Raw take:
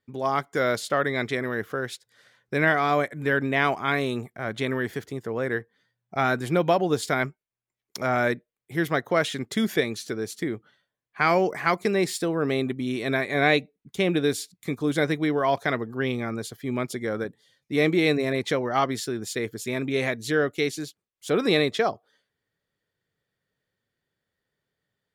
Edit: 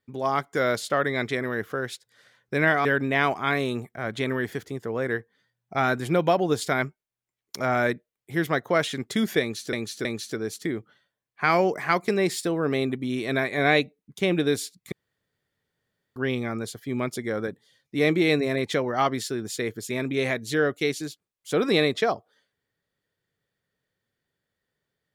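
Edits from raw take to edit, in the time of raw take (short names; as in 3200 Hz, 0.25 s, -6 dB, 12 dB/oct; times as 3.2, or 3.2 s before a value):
2.85–3.26 cut
9.82–10.14 loop, 3 plays
14.69–15.93 room tone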